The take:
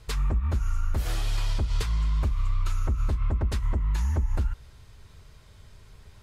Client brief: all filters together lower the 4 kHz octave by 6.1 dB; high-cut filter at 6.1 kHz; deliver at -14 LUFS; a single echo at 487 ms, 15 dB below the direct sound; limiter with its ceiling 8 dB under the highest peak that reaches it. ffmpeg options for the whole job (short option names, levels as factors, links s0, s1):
-af "lowpass=6100,equalizer=f=4000:t=o:g=-7,alimiter=level_in=1.19:limit=0.0631:level=0:latency=1,volume=0.841,aecho=1:1:487:0.178,volume=10.6"